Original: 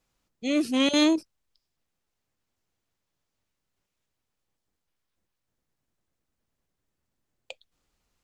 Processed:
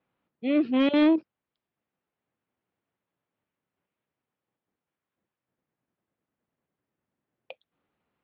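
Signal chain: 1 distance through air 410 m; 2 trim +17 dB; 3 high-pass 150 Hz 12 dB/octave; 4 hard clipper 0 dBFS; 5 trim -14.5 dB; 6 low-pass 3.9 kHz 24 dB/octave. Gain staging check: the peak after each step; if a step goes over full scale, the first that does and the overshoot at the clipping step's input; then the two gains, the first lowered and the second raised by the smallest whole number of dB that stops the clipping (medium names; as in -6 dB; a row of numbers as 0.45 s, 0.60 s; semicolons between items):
-15.0 dBFS, +2.0 dBFS, +3.0 dBFS, 0.0 dBFS, -14.5 dBFS, -14.0 dBFS; step 2, 3.0 dB; step 2 +14 dB, step 5 -11.5 dB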